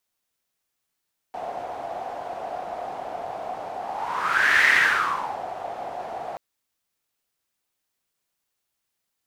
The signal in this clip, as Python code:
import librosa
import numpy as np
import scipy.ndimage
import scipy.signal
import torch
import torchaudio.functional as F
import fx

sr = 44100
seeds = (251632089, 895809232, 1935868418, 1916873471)

y = fx.whoosh(sr, seeds[0], length_s=5.03, peak_s=3.34, rise_s=0.92, fall_s=0.82, ends_hz=720.0, peak_hz=1900.0, q=6.9, swell_db=15.5)